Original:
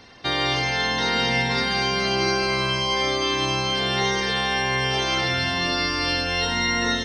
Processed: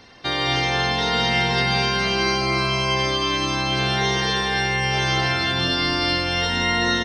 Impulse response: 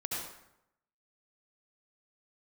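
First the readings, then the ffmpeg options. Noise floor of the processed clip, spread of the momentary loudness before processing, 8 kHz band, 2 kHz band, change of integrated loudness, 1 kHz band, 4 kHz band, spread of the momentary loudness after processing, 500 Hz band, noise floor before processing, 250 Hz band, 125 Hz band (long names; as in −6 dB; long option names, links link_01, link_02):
−24 dBFS, 1 LU, 0.0 dB, +1.5 dB, +1.5 dB, +2.0 dB, +1.0 dB, 2 LU, +0.5 dB, −26 dBFS, +2.0 dB, +4.5 dB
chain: -filter_complex "[0:a]asplit=2[link_01][link_02];[link_02]adelay=227.4,volume=-6dB,highshelf=frequency=4000:gain=-5.12[link_03];[link_01][link_03]amix=inputs=2:normalize=0,asplit=2[link_04][link_05];[1:a]atrim=start_sample=2205,adelay=143[link_06];[link_05][link_06]afir=irnorm=-1:irlink=0,volume=-10dB[link_07];[link_04][link_07]amix=inputs=2:normalize=0"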